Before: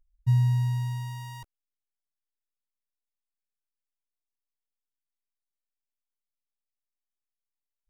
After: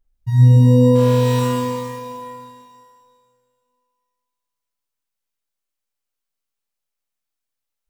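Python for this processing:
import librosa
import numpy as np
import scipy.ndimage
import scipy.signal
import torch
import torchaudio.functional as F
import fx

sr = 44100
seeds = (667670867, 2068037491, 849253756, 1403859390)

y = fx.leveller(x, sr, passes=5, at=(0.95, 1.39))
y = fx.rev_shimmer(y, sr, seeds[0], rt60_s=2.0, semitones=12, shimmer_db=-8, drr_db=-8.0)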